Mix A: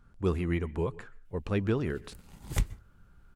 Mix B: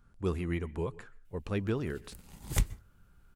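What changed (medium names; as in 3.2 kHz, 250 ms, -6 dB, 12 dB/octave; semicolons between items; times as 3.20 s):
speech -3.5 dB; master: add treble shelf 5.7 kHz +6 dB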